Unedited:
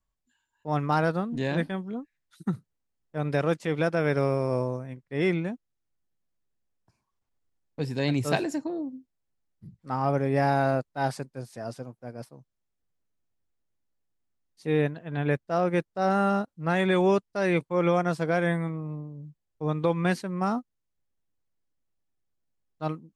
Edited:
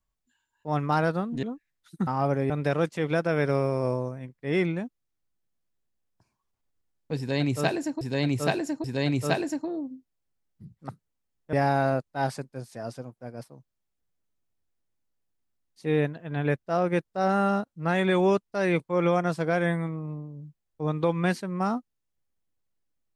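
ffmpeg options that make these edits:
-filter_complex "[0:a]asplit=8[s0][s1][s2][s3][s4][s5][s6][s7];[s0]atrim=end=1.432[s8];[s1]atrim=start=1.898:end=2.542[s9];[s2]atrim=start=9.908:end=10.342[s10];[s3]atrim=start=3.178:end=8.692[s11];[s4]atrim=start=7.858:end=8.692[s12];[s5]atrim=start=7.858:end=9.912[s13];[s6]atrim=start=2.538:end=3.182[s14];[s7]atrim=start=10.338[s15];[s8][s9]acrossfade=d=0.004:c1=hsin:c2=hsin[s16];[s16][s10]acrossfade=d=0.004:c1=hsin:c2=hsin[s17];[s17][s11]acrossfade=d=0.004:c1=hsin:c2=hsin[s18];[s18][s12]acrossfade=d=0.004:c1=hsin:c2=hsin[s19];[s19][s13]acrossfade=d=0.004:c1=hsin:c2=hsin[s20];[s20][s14]acrossfade=d=0.004:c1=hsin:c2=hsin[s21];[s21][s15]acrossfade=d=0.004:c1=hsin:c2=hsin"

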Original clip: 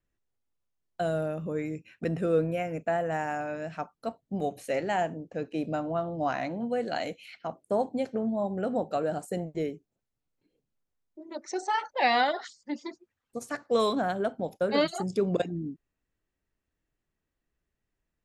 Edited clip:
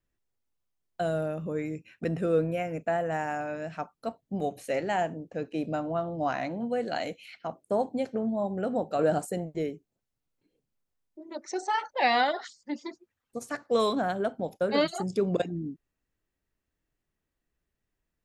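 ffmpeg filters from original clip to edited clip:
-filter_complex "[0:a]asplit=3[s0][s1][s2];[s0]atrim=end=8.992[s3];[s1]atrim=start=8.988:end=9.312,asetpts=PTS-STARTPTS,volume=1.88[s4];[s2]atrim=start=9.308[s5];[s3][s4]acrossfade=d=0.004:c1=hsin:c2=hsin[s6];[s6][s5]acrossfade=d=0.004:c1=hsin:c2=hsin"

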